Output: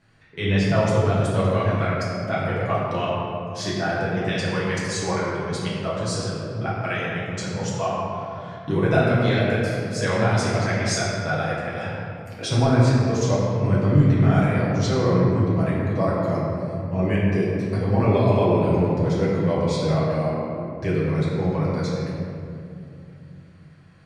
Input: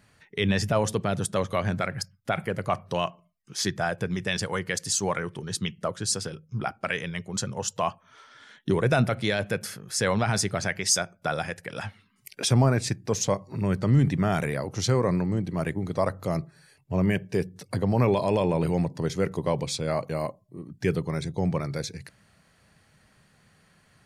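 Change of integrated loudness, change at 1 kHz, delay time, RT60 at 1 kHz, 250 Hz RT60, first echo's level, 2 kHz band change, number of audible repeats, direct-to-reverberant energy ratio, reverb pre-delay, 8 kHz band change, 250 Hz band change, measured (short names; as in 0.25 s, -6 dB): +4.5 dB, +4.5 dB, none, 2.4 s, 4.1 s, none, +4.0 dB, none, -8.5 dB, 6 ms, -5.0 dB, +5.5 dB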